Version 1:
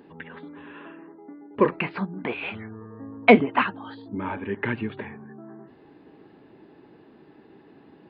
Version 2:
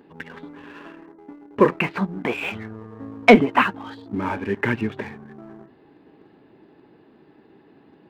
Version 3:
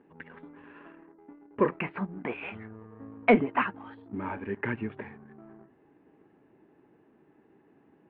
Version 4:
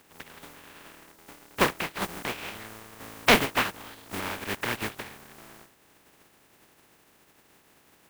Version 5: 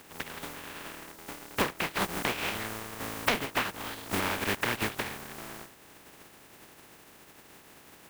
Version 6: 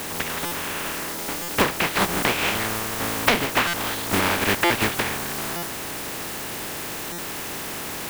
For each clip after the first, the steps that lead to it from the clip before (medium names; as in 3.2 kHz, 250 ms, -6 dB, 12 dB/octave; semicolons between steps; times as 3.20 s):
waveshaping leveller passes 1; trim +1 dB
low-pass 2.6 kHz 24 dB/octave; trim -9 dB
spectral contrast reduction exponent 0.28; trim +1.5 dB
compression 8:1, threshold -32 dBFS, peak gain reduction 18.5 dB; trim +6.5 dB
jump at every zero crossing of -34 dBFS; buffer glitch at 0.45/1.42/3.67/4.64/5.56/7.12 s, samples 256, times 10; trim +7 dB